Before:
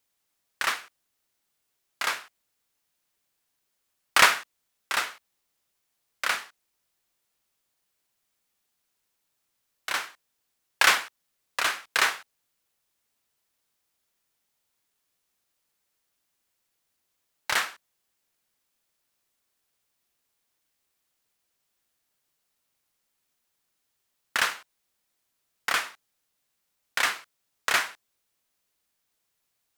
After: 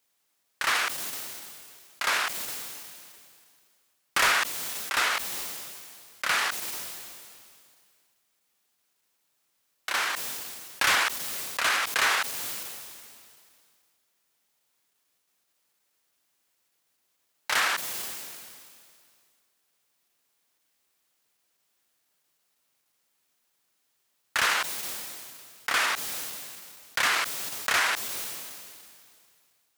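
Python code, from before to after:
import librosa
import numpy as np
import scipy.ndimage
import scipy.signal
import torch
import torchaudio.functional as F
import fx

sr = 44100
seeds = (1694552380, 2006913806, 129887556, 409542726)

p1 = fx.highpass(x, sr, hz=160.0, slope=6)
p2 = fx.level_steps(p1, sr, step_db=13)
p3 = p1 + F.gain(torch.from_numpy(p2), -1.0).numpy()
p4 = 10.0 ** (-16.5 / 20.0) * np.tanh(p3 / 10.0 ** (-16.5 / 20.0))
p5 = fx.sustainer(p4, sr, db_per_s=26.0)
y = F.gain(torch.from_numpy(p5), -1.5).numpy()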